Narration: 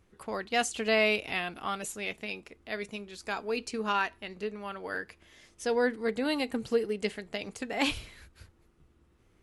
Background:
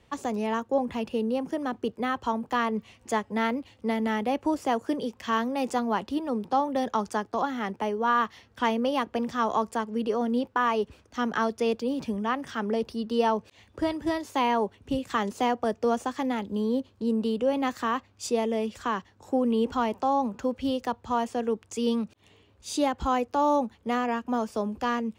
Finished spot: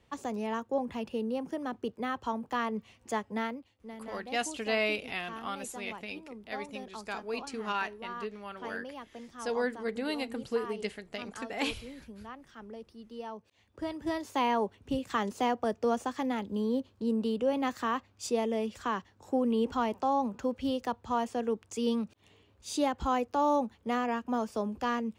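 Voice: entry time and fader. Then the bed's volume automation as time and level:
3.80 s, -4.0 dB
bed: 3.38 s -5.5 dB
3.75 s -17.5 dB
13.27 s -17.5 dB
14.21 s -3.5 dB

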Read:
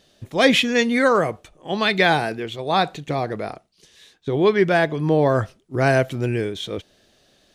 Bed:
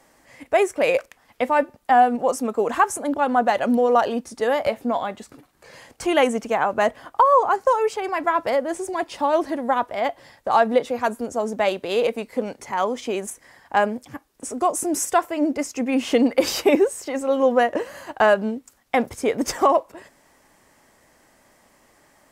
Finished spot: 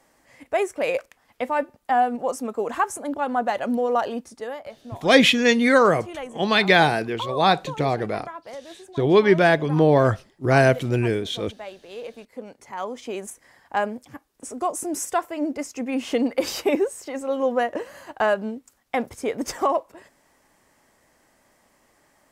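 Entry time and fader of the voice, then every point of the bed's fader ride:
4.70 s, +1.0 dB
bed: 4.23 s -4.5 dB
4.68 s -16.5 dB
11.84 s -16.5 dB
13.23 s -4.5 dB

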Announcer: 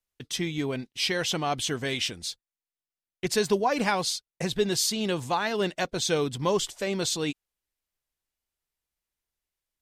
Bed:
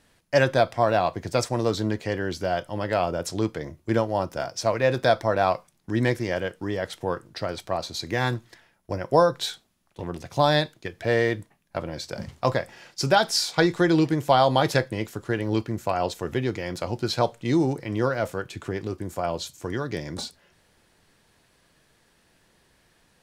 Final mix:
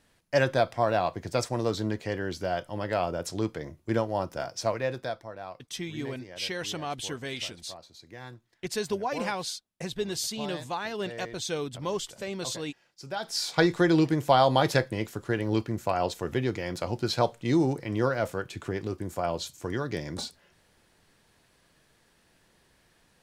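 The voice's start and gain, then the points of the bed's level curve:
5.40 s, -6.0 dB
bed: 4.67 s -4 dB
5.33 s -19 dB
13.05 s -19 dB
13.5 s -2 dB

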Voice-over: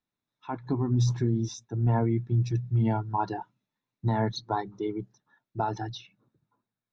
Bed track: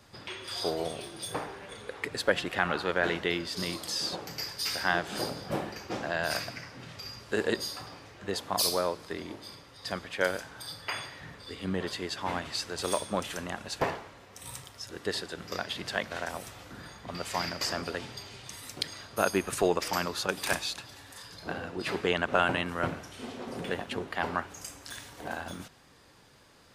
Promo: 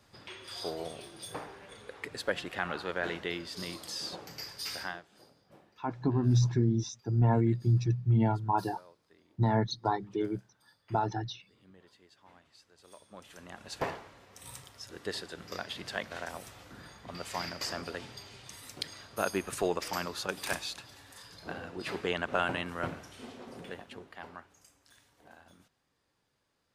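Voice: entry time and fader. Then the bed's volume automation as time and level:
5.35 s, -0.5 dB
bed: 4.82 s -6 dB
5.1 s -26.5 dB
12.86 s -26.5 dB
13.77 s -4.5 dB
23.12 s -4.5 dB
24.71 s -19.5 dB

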